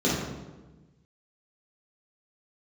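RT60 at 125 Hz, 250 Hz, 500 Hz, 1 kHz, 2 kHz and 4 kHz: 1.7, 1.5, 1.3, 1.1, 0.90, 0.80 seconds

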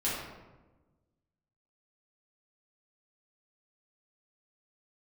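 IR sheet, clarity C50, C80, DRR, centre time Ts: 0.0 dB, 2.5 dB, −9.0 dB, 75 ms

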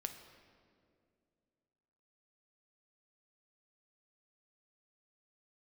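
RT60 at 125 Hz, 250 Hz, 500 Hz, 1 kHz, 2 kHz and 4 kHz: 2.8, 2.9, 2.7, 2.0, 1.7, 1.4 seconds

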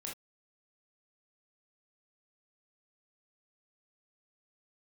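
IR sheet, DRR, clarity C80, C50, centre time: −2.5 dB, 23.0 dB, 6.0 dB, 29 ms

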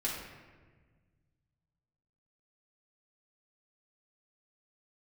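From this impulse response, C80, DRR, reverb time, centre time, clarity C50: 4.0 dB, −6.0 dB, 1.4 s, 65 ms, 1.5 dB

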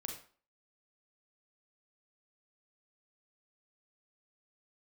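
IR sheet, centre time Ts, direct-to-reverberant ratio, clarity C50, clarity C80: 26 ms, 1.5 dB, 6.0 dB, 10.0 dB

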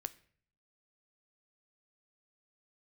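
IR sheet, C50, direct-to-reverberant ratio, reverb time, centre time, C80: 19.0 dB, 12.5 dB, 0.55 s, 3 ms, 22.5 dB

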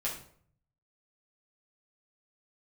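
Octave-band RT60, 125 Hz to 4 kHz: 1.0, 0.70, 0.60, 0.55, 0.45, 0.40 seconds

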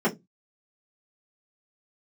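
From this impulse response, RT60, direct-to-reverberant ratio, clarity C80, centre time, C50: 0.15 s, −6.5 dB, 26.5 dB, 14 ms, 17.0 dB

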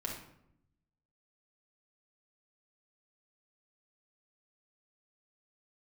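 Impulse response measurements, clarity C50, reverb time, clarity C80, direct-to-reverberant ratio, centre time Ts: 4.0 dB, 0.75 s, 8.5 dB, −2.0 dB, 34 ms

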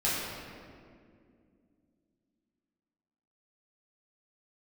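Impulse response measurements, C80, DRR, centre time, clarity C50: 0.0 dB, −9.0 dB, 128 ms, −1.5 dB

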